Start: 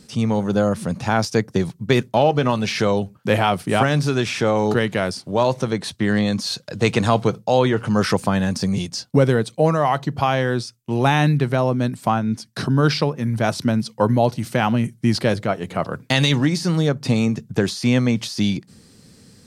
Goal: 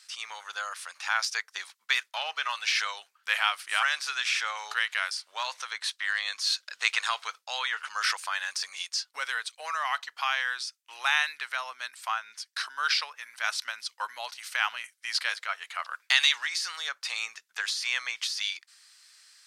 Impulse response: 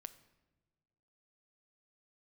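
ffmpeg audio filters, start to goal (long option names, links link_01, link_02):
-af "highpass=frequency=1300:width=0.5412,highpass=frequency=1300:width=1.3066,highshelf=frequency=10000:gain=-9"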